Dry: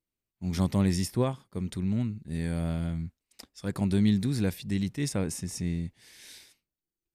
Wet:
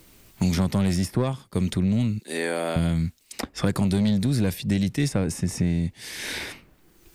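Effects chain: 2.19–2.76 HPF 370 Hz 24 dB/oct; soft clip -21.5 dBFS, distortion -14 dB; three-band squash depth 100%; gain +7 dB

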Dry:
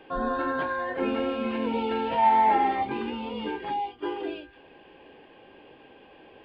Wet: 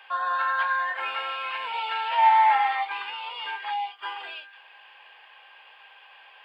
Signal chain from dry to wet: HPF 960 Hz 24 dB/oct; gain +7 dB

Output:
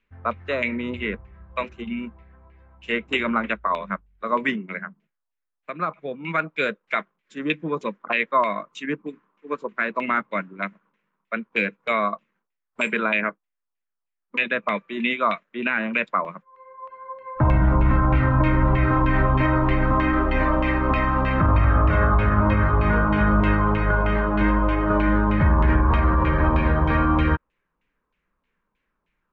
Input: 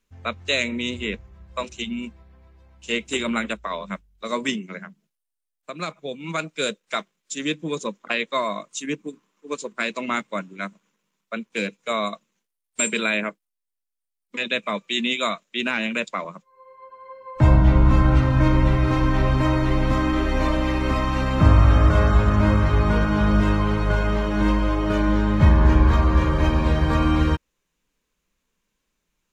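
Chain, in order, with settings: LFO low-pass saw down 3.2 Hz 980–2600 Hz; limiter -9.5 dBFS, peak gain reduction 9 dB

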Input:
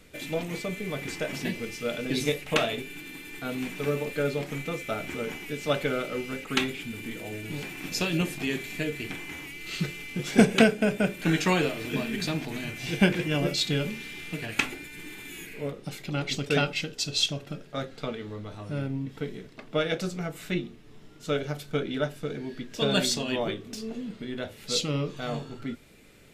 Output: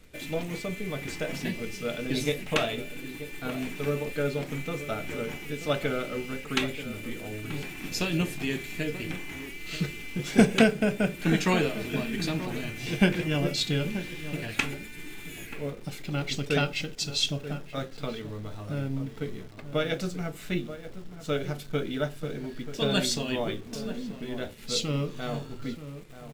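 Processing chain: low shelf 69 Hz +10 dB; outdoor echo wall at 160 m, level -12 dB; in parallel at -9.5 dB: bit-crush 7-bit; on the sum: gain -4 dB

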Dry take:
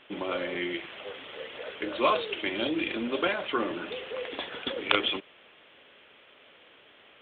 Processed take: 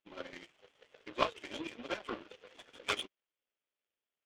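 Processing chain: plain phase-vocoder stretch 0.59×; power-law curve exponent 2; gain +4 dB

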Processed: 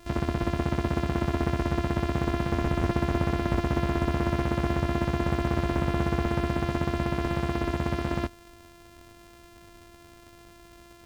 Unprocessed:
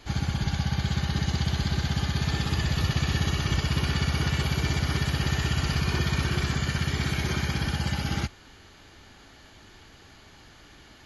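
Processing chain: sample sorter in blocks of 128 samples; slew limiter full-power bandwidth 120 Hz

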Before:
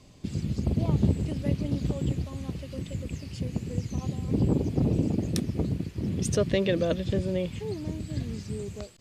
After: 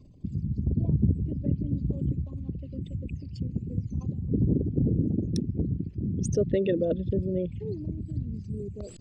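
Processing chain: formant sharpening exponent 2; reverse; upward compressor, threshold -36 dBFS; reverse

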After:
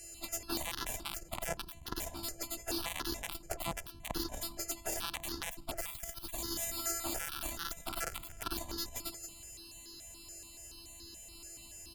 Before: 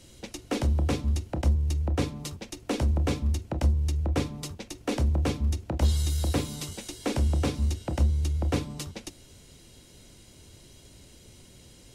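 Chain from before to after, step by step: frequency quantiser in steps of 2 st; on a send: feedback echo 0.173 s, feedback 20%, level -13 dB; on the sum: robotiser 337 Hz; in parallel at -12 dB: soft clip -19.5 dBFS, distortion -19 dB; on the sum: limiter -22 dBFS, peak gain reduction 11.5 dB; LPF 9900 Hz 12 dB/oct; added harmonics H 4 -8 dB, 6 -25 dB, 7 -27 dB, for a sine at -22 dBFS; 6.79–8.53 bell 1400 Hz +10 dB 0.29 oct; step phaser 7 Hz 1000–2300 Hz; gain +10 dB

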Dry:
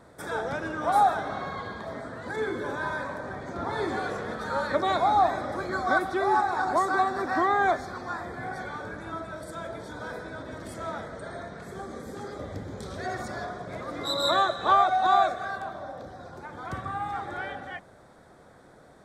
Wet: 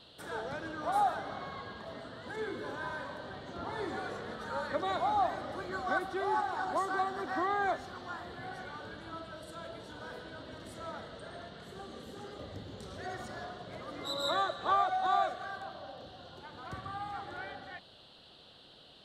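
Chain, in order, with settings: band noise 2800–4400 Hz -51 dBFS; gain -8 dB

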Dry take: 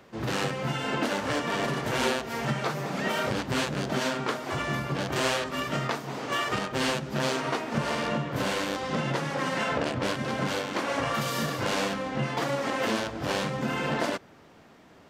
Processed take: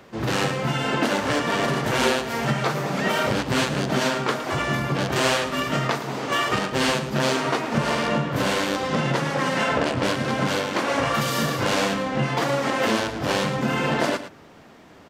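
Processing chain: echo 0.112 s -12 dB; gain +5.5 dB

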